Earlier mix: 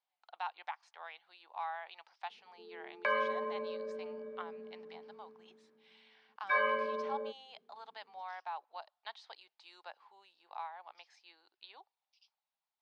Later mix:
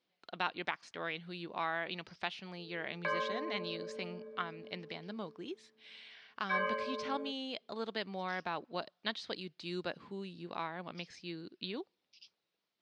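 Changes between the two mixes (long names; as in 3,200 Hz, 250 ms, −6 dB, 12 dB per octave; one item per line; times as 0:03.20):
speech: remove four-pole ladder high-pass 760 Hz, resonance 70%
background −3.5 dB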